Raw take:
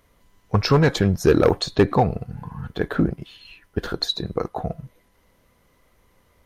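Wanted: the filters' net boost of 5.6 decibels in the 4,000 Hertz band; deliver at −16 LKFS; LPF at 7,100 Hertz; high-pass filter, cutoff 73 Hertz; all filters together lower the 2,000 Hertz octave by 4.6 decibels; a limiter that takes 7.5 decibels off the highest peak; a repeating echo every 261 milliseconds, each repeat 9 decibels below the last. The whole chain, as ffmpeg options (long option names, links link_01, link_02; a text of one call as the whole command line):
ffmpeg -i in.wav -af "highpass=73,lowpass=7100,equalizer=frequency=2000:width_type=o:gain=-8,equalizer=frequency=4000:width_type=o:gain=8,alimiter=limit=-11dB:level=0:latency=1,aecho=1:1:261|522|783|1044:0.355|0.124|0.0435|0.0152,volume=8dB" out.wav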